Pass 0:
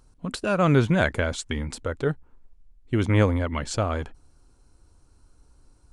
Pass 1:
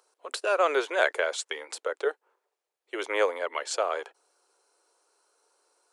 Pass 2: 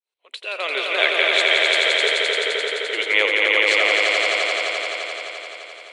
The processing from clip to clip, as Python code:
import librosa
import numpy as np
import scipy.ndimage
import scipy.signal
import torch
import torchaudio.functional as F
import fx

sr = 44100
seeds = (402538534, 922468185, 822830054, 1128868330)

y1 = scipy.signal.sosfilt(scipy.signal.butter(8, 400.0, 'highpass', fs=sr, output='sos'), x)
y2 = fx.fade_in_head(y1, sr, length_s=1.16)
y2 = fx.band_shelf(y2, sr, hz=2800.0, db=16.0, octaves=1.3)
y2 = fx.echo_swell(y2, sr, ms=86, loudest=5, wet_db=-3.5)
y2 = y2 * 10.0 ** (-1.0 / 20.0)